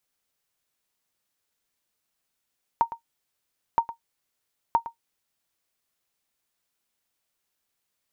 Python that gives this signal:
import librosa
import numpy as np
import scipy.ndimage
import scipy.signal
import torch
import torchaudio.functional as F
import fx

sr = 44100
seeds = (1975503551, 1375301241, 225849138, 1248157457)

y = fx.sonar_ping(sr, hz=925.0, decay_s=0.11, every_s=0.97, pings=3, echo_s=0.11, echo_db=-14.5, level_db=-11.0)